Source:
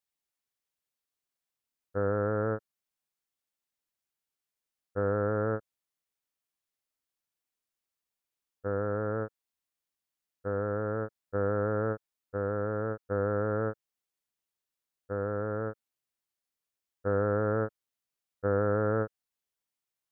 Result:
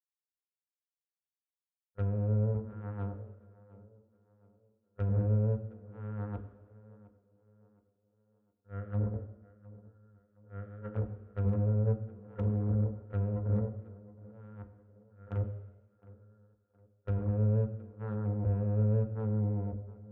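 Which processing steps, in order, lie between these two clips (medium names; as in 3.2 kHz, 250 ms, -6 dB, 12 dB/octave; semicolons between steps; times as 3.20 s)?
chunks repeated in reverse 636 ms, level -2 dB; gate -26 dBFS, range -44 dB; bass shelf 93 Hz +11.5 dB; small resonant body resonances 200/910/1400 Hz, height 10 dB, ringing for 70 ms; in parallel at -3 dB: compression, threshold -46 dBFS, peak gain reduction 25 dB; on the sum: peak limiter -28 dBFS, peak gain reduction 17.5 dB; low-pass that closes with the level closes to 500 Hz, closed at -36 dBFS; Chebyshev shaper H 3 -23 dB, 4 -17 dB, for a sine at -29 dBFS; tape echo 715 ms, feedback 47%, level -17 dB, low-pass 1.8 kHz; on a send at -5 dB: reverberation RT60 1.0 s, pre-delay 3 ms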